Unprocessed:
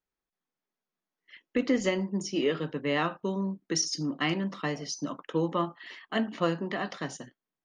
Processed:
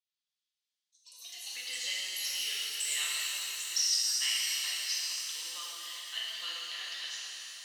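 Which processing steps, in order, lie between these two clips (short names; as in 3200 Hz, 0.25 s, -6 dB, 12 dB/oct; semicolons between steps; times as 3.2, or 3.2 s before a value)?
ladder band-pass 4200 Hz, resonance 45%; echoes that change speed 0.141 s, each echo +6 st, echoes 2, each echo -6 dB; shimmer reverb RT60 3.7 s, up +7 st, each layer -8 dB, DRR -6 dB; gain +9 dB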